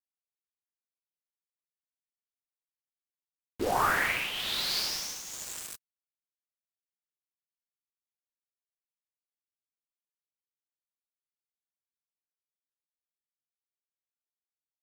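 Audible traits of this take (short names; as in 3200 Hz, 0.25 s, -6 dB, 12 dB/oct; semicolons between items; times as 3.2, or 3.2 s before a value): a quantiser's noise floor 6-bit, dither none; tremolo triangle 1.1 Hz, depth 65%; Vorbis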